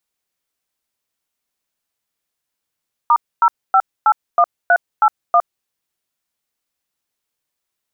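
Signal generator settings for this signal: DTMF "*0581381", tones 61 ms, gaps 259 ms, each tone -11 dBFS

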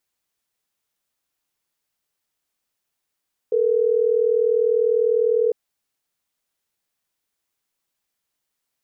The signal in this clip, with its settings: call progress tone ringback tone, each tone -18.5 dBFS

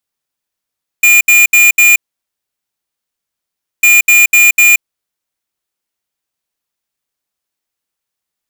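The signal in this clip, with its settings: beep pattern square 2.42 kHz, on 0.18 s, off 0.07 s, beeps 4, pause 1.87 s, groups 2, -6 dBFS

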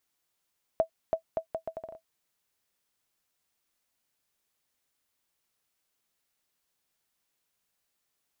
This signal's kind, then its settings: bouncing ball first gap 0.33 s, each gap 0.73, 651 Hz, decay 96 ms -14.5 dBFS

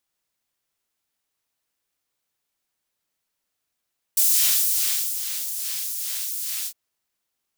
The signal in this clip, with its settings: synth patch with filter wobble A#2, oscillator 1 triangle, interval 0 st, oscillator 2 level -10 dB, noise -10 dB, filter highpass, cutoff 3.3 kHz, Q 0.72, filter envelope 1 oct, filter decay 0.06 s, filter sustain 50%, attack 4.8 ms, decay 1.06 s, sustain -11.5 dB, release 0.07 s, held 2.49 s, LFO 2.4 Hz, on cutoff 0.6 oct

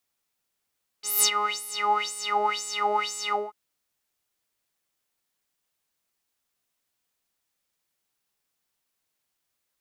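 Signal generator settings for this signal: synth patch with filter wobble G#4, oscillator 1 square, oscillator 2 triangle, interval +12 st, oscillator 2 level -3.5 dB, sub -7 dB, noise -16 dB, filter bandpass, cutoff 1.5 kHz, Q 7.6, filter envelope 1.5 oct, filter decay 1.47 s, attack 183 ms, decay 0.09 s, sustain -18 dB, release 0.20 s, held 2.29 s, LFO 2 Hz, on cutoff 1.8 oct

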